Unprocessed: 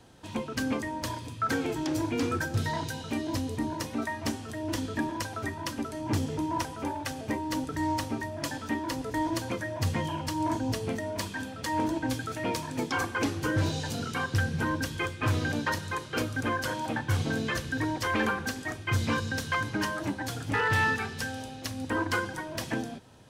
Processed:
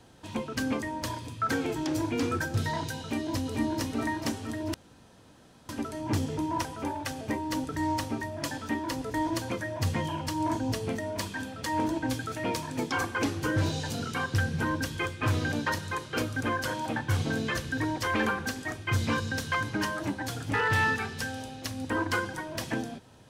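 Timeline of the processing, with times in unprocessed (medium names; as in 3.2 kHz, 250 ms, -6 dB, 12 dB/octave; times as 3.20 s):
3.01–3.76 s: echo throw 440 ms, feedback 50%, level -4 dB
4.74–5.69 s: room tone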